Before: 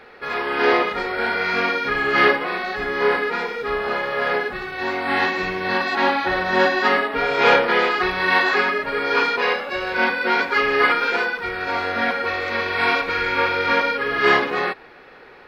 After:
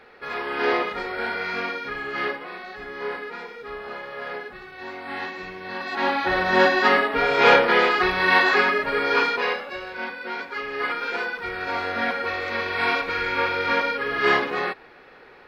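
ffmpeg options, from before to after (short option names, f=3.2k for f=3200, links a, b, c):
-af "volume=15dB,afade=t=out:st=1.19:d=1:silence=0.473151,afade=t=in:st=5.75:d=0.67:silence=0.266073,afade=t=out:st=8.97:d=1:silence=0.251189,afade=t=in:st=10.7:d=0.85:silence=0.375837"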